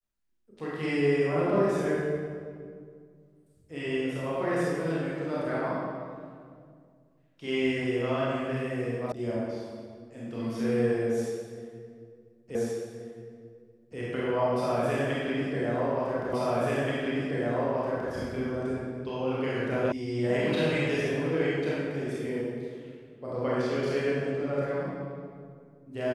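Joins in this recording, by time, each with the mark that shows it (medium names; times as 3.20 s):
9.12 s: sound stops dead
12.55 s: repeat of the last 1.43 s
16.33 s: repeat of the last 1.78 s
19.92 s: sound stops dead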